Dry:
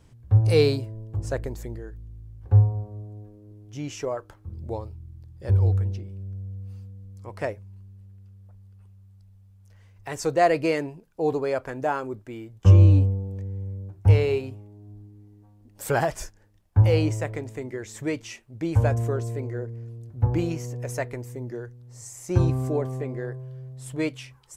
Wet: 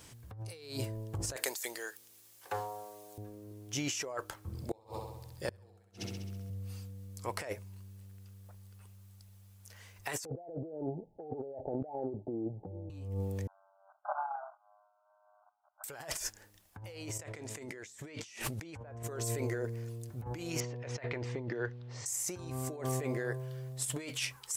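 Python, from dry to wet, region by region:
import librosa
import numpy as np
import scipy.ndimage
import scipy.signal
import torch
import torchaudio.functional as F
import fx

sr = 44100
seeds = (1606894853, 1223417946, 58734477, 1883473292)

y = fx.chain(x, sr, fx.highpass(hz=580.0, slope=12),
    fx.high_shelf(hz=2300.0, db=10.5), at=(1.36, 3.18))
y = fx.chain(y, sr, fx.echo_feedback(ms=66, feedback_pct=59, wet_db=-3.0),
    fx.gate_flip(shuts_db=-23.0, range_db=-33), at=(4.48, 6.5))
y = fx.chain(y, sr, fx.cheby1_lowpass(hz=870.0, order=10),
    fx.band_squash(depth_pct=70), at=(10.25, 12.9))
y = fx.chain(y, sr, fx.lower_of_two(delay_ms=1.4),
    fx.level_steps(step_db=14),
    fx.brickwall_bandpass(low_hz=590.0, high_hz=1600.0), at=(13.47, 15.84))
y = fx.chain(y, sr, fx.env_lowpass_down(base_hz=1400.0, full_db=-16.5),
    fx.env_flatten(amount_pct=70), at=(17.19, 19.03))
y = fx.chain(y, sr, fx.lowpass(hz=3800.0, slope=24),
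    fx.over_compress(threshold_db=-36.0, ratio=-0.5), at=(20.6, 22.06))
y = fx.tilt_eq(y, sr, slope=3.0)
y = fx.over_compress(y, sr, threshold_db=-38.0, ratio=-1.0)
y = y * 10.0 ** (-2.5 / 20.0)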